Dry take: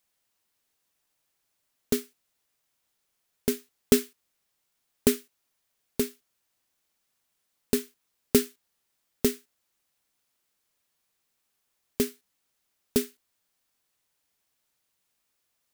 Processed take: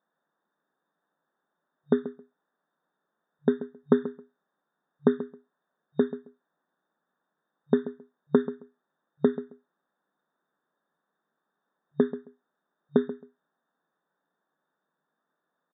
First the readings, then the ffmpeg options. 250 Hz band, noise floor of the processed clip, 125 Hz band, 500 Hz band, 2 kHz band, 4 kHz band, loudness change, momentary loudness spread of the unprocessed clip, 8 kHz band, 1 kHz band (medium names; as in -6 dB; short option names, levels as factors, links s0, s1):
+2.5 dB, -83 dBFS, +1.0 dB, +2.5 dB, -3.0 dB, under -15 dB, 0.0 dB, 14 LU, under -40 dB, +5.5 dB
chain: -filter_complex "[0:a]volume=3.16,asoftclip=hard,volume=0.316,acompressor=threshold=0.0891:ratio=6,asuperstop=centerf=2600:order=12:qfactor=1.3,asplit=2[s0][s1];[s1]adelay=134,lowpass=f=2000:p=1,volume=0.211,asplit=2[s2][s3];[s3]adelay=134,lowpass=f=2000:p=1,volume=0.17[s4];[s0][s2][s4]amix=inputs=3:normalize=0,afftfilt=real='re*between(b*sr/4096,140,3700)':imag='im*between(b*sr/4096,140,3700)':win_size=4096:overlap=0.75,volume=2"